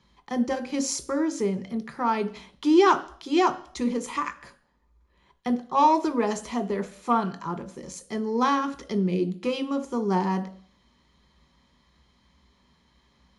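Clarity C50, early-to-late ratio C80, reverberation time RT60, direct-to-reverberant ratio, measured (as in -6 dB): 15.5 dB, 19.0 dB, 0.50 s, 7.5 dB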